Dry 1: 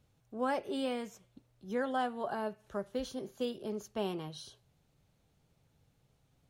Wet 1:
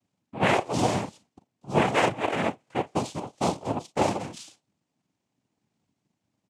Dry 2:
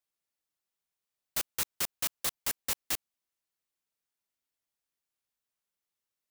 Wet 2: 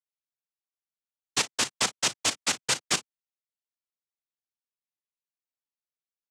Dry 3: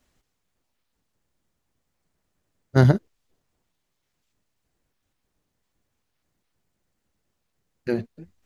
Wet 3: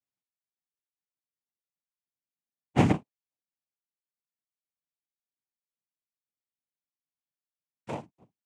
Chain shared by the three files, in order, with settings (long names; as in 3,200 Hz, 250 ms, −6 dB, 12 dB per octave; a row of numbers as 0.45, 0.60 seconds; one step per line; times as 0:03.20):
ambience of single reflections 37 ms −10 dB, 54 ms −16 dB
power curve on the samples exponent 1.4
cochlear-implant simulation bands 4
loudness normalisation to −27 LKFS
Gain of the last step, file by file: +13.0, +14.5, −4.5 decibels